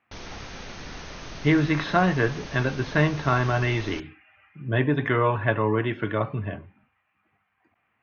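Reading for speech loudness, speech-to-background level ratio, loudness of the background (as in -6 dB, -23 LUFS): -24.5 LUFS, 15.5 dB, -40.0 LUFS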